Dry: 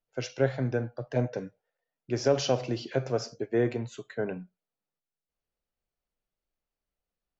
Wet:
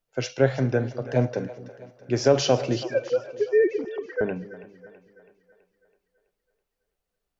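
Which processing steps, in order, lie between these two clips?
2.83–4.21 sine-wave speech; split-band echo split 450 Hz, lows 0.214 s, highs 0.328 s, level -15 dB; gain +5.5 dB

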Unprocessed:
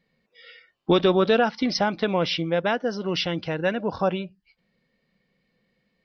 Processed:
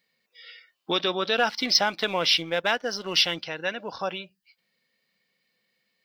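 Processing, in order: tilt +4 dB/oct; 1.38–3.43 sample leveller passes 1; gain -4 dB

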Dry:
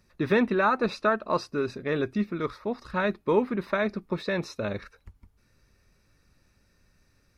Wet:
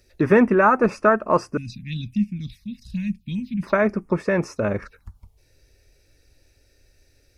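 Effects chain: 1.57–3.63 elliptic band-stop 200–2700 Hz, stop band 40 dB; envelope phaser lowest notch 170 Hz, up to 3900 Hz, full sweep at -31 dBFS; gain +8 dB

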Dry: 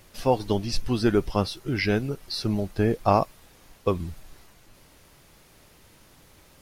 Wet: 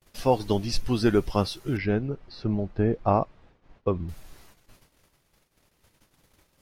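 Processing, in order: gate -52 dBFS, range -34 dB; 1.77–4.09 tape spacing loss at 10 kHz 33 dB

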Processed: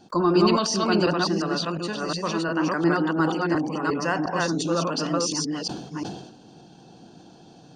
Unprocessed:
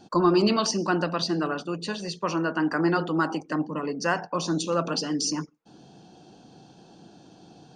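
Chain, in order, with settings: reverse delay 0.355 s, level -0.5 dB; sustainer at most 64 dB/s; gain -1 dB

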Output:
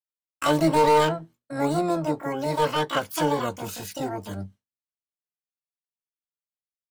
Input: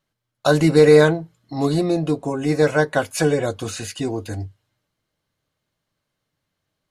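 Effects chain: overloaded stage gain 9.5 dB; harmoniser +12 st 0 dB; expander -35 dBFS; gain -8 dB

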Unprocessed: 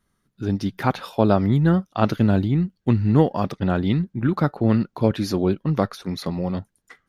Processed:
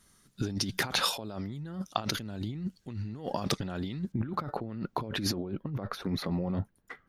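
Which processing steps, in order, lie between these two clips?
bell 7500 Hz +12.5 dB 2.2 oct, from 4.12 s -3 dB, from 5.34 s -13 dB; negative-ratio compressor -30 dBFS, ratio -1; gain -4.5 dB

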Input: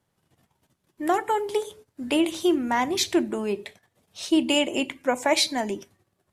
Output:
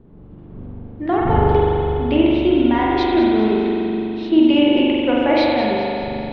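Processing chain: wind noise 300 Hz -41 dBFS; steep low-pass 4100 Hz 36 dB/oct; low shelf 390 Hz +10.5 dB; on a send: split-band echo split 320 Hz, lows 0.518 s, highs 0.202 s, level -12 dB; on the sum: spring tank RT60 3.1 s, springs 41 ms, chirp 55 ms, DRR -5 dB; gain -2.5 dB

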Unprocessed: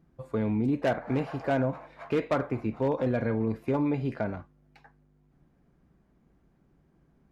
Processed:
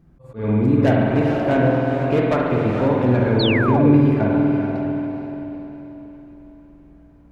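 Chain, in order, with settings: low shelf 120 Hz +9 dB; on a send: diffused feedback echo 0.455 s, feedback 43%, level -5 dB; on the sum: spring tank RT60 2.1 s, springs 48 ms, chirp 25 ms, DRR -1 dB; painted sound fall, 3.39–3.99, 260–4600 Hz -29 dBFS; auto swell 0.165 s; gain +5 dB

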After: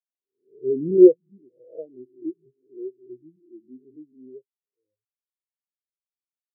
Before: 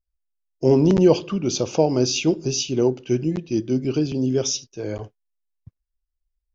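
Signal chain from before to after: spectral swells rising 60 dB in 1.47 s; LPF 1300 Hz; spectral expander 4:1

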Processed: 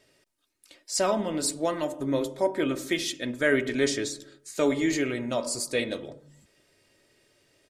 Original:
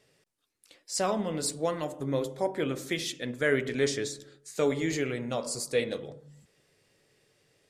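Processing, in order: comb 3.2 ms, depth 47%; gain +2.5 dB

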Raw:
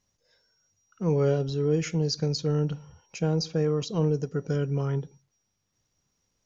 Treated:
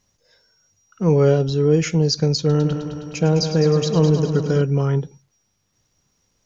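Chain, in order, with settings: 2.39–4.62 multi-head echo 0.104 s, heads first and second, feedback 66%, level -11.5 dB; gain +8.5 dB

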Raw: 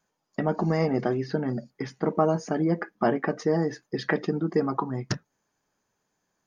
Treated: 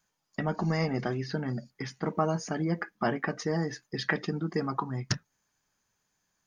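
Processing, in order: bell 430 Hz -10.5 dB 2.8 oct; gain +3 dB

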